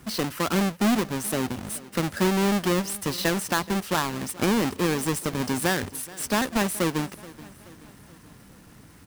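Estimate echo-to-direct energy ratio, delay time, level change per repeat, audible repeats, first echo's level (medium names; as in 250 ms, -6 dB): -18.5 dB, 427 ms, -5.5 dB, 3, -20.0 dB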